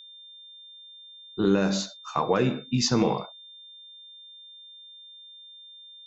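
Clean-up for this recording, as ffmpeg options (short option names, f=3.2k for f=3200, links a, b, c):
-af "bandreject=f=3.6k:w=30"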